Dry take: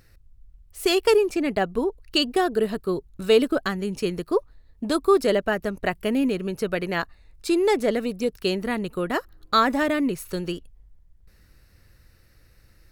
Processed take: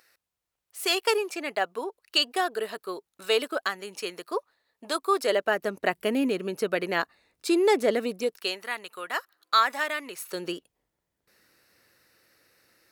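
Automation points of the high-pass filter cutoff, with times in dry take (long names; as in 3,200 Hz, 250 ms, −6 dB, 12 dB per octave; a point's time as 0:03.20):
0:05.12 670 Hz
0:05.75 280 Hz
0:08.12 280 Hz
0:08.61 1,000 Hz
0:10.04 1,000 Hz
0:10.45 340 Hz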